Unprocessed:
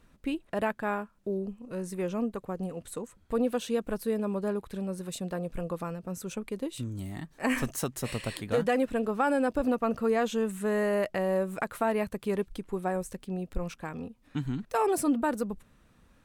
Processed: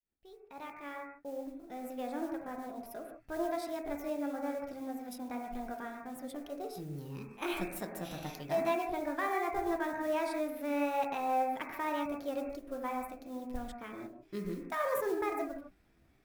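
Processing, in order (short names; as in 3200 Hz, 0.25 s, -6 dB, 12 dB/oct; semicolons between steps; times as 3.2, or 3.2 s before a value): opening faded in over 1.81 s; pitch shift +5.5 st; modulation noise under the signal 22 dB; on a send: brick-wall FIR low-pass 2700 Hz + reverb, pre-delay 3 ms, DRR 5 dB; on the sum: gain -9 dB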